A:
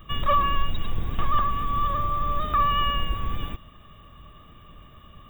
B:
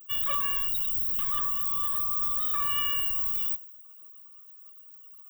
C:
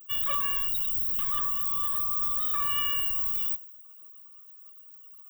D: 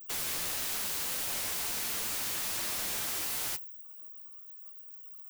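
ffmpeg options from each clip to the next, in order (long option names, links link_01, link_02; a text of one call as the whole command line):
ffmpeg -i in.wav -af "aemphasis=mode=production:type=riaa,afftdn=noise_reduction=19:noise_floor=-38,equalizer=frequency=750:width=0.59:gain=-11.5,volume=-4.5dB" out.wav
ffmpeg -i in.wav -af anull out.wav
ffmpeg -i in.wav -af "crystalizer=i=0.5:c=0,aeval=exprs='(mod(18.8*val(0)+1,2)-1)/18.8':channel_layout=same,flanger=delay=8.5:depth=4.5:regen=-32:speed=1.5:shape=sinusoidal" out.wav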